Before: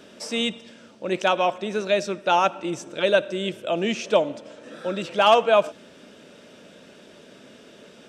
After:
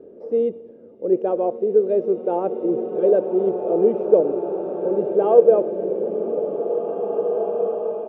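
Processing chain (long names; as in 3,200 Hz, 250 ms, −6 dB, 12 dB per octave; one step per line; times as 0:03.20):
low-pass with resonance 460 Hz, resonance Q 3.8
comb filter 2.5 ms, depth 33%
slow-attack reverb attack 2,320 ms, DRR 4 dB
level −1.5 dB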